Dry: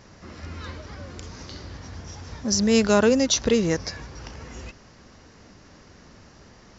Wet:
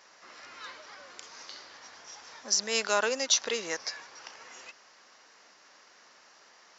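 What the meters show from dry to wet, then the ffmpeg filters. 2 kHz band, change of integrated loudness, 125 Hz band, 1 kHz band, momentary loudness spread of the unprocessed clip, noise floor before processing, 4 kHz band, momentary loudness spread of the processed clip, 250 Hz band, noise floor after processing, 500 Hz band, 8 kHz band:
-2.0 dB, -7.0 dB, under -25 dB, -3.5 dB, 21 LU, -51 dBFS, -2.0 dB, 21 LU, -23.5 dB, -59 dBFS, -11.0 dB, n/a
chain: -af "highpass=810,volume=-2dB"

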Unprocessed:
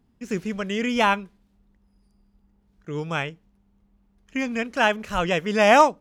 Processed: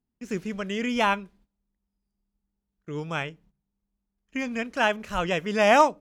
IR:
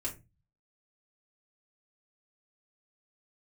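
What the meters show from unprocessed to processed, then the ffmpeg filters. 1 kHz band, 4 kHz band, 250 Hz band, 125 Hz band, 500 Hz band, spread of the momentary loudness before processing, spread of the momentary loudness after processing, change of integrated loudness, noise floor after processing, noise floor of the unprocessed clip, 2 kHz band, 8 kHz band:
-3.0 dB, -3.0 dB, -3.0 dB, -3.5 dB, -3.0 dB, 16 LU, 16 LU, -2.5 dB, -83 dBFS, -65 dBFS, -3.0 dB, -3.0 dB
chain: -filter_complex "[0:a]agate=range=-16dB:threshold=-54dB:ratio=16:detection=peak,asplit=2[a][b];[1:a]atrim=start_sample=2205[c];[b][c]afir=irnorm=-1:irlink=0,volume=-22dB[d];[a][d]amix=inputs=2:normalize=0,volume=-3.5dB"

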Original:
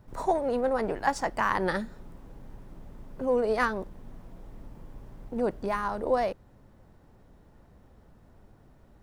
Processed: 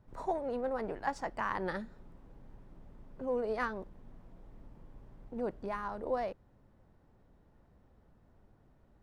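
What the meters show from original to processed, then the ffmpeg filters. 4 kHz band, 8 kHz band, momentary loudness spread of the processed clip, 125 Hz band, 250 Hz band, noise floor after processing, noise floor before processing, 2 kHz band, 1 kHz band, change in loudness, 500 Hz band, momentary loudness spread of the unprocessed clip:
-11.0 dB, n/a, 10 LU, -8.0 dB, -8.0 dB, -65 dBFS, -57 dBFS, -8.5 dB, -8.0 dB, -8.0 dB, -8.0 dB, 10 LU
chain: -af "highshelf=f=6.3k:g=-11,volume=-8dB"

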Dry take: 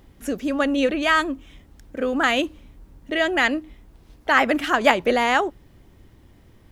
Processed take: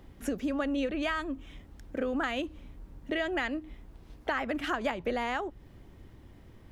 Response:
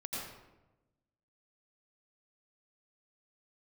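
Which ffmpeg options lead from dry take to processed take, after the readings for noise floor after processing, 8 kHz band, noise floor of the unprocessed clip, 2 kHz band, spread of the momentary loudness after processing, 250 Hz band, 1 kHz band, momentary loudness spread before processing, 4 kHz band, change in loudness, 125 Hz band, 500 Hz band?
-54 dBFS, -13.0 dB, -53 dBFS, -13.5 dB, 19 LU, -8.5 dB, -13.0 dB, 12 LU, -13.5 dB, -12.0 dB, -3.5 dB, -11.0 dB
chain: -filter_complex "[0:a]highshelf=f=4.2k:g=-6,acrossover=split=130[a][b];[b]acompressor=threshold=-28dB:ratio=6[c];[a][c]amix=inputs=2:normalize=0,volume=-1dB"

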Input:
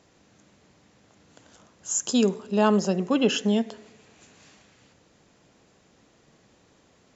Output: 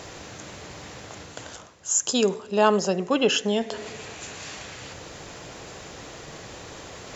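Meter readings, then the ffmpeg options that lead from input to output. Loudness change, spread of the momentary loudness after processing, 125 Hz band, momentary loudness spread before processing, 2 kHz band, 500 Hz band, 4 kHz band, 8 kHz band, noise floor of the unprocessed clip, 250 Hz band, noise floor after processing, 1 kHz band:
-0.5 dB, 19 LU, -2.5 dB, 6 LU, +5.0 dB, +2.5 dB, +4.5 dB, n/a, -61 dBFS, -3.5 dB, -44 dBFS, +4.0 dB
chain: -af "equalizer=f=220:t=o:w=1:g=-9,areverse,acompressor=mode=upward:threshold=-29dB:ratio=2.5,areverse,volume=4dB"

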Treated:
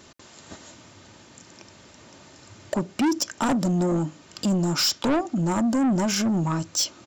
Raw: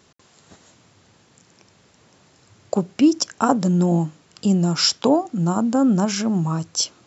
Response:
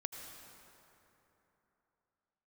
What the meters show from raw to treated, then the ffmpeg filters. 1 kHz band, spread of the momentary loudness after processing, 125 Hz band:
-4.0 dB, 8 LU, -5.0 dB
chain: -filter_complex "[0:a]asplit=2[a][b];[b]acompressor=threshold=-31dB:ratio=6,volume=0dB[c];[a][c]amix=inputs=2:normalize=0,aecho=1:1:3.3:0.35,asoftclip=type=tanh:threshold=-18.5dB"

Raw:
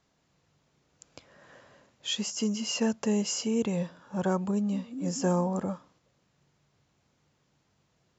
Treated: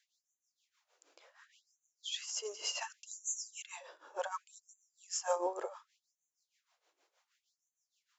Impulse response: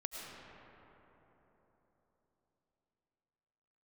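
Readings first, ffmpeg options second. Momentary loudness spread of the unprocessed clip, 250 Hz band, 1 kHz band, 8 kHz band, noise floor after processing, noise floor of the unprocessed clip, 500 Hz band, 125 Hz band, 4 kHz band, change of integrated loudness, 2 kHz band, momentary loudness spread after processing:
7 LU, -28.5 dB, -4.0 dB, n/a, under -85 dBFS, -73 dBFS, -9.0 dB, under -40 dB, -7.0 dB, -9.5 dB, -5.5 dB, 14 LU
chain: -filter_complex "[0:a]tremolo=f=6.4:d=0.81,asplit=2[a][b];[1:a]atrim=start_sample=2205,atrim=end_sample=3969[c];[b][c]afir=irnorm=-1:irlink=0,volume=-6.5dB[d];[a][d]amix=inputs=2:normalize=0,afftfilt=real='re*gte(b*sr/1024,290*pow(6000/290,0.5+0.5*sin(2*PI*0.68*pts/sr)))':imag='im*gte(b*sr/1024,290*pow(6000/290,0.5+0.5*sin(2*PI*0.68*pts/sr)))':win_size=1024:overlap=0.75,volume=-1.5dB"

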